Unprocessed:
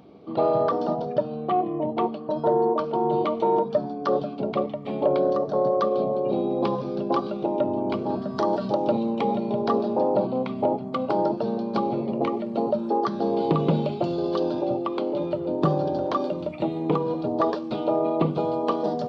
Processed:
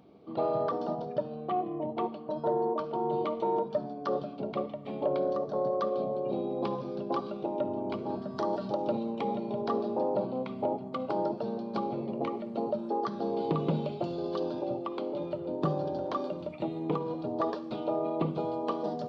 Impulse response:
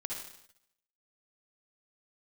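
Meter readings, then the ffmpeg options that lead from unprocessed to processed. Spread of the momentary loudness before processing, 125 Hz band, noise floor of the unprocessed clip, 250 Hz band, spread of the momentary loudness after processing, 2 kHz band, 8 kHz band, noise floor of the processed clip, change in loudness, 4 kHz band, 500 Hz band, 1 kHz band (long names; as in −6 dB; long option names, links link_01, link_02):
5 LU, −7.5 dB, −33 dBFS, −8.0 dB, 5 LU, −7.5 dB, can't be measured, −41 dBFS, −7.5 dB, −7.5 dB, −7.5 dB, −7.5 dB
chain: -filter_complex "[0:a]asplit=2[link_01][link_02];[1:a]atrim=start_sample=2205[link_03];[link_02][link_03]afir=irnorm=-1:irlink=0,volume=-15dB[link_04];[link_01][link_04]amix=inputs=2:normalize=0,volume=-8.5dB"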